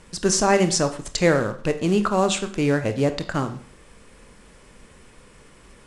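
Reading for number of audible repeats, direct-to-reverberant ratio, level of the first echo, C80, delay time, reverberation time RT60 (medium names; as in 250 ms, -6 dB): no echo, 8.5 dB, no echo, 16.5 dB, no echo, 0.50 s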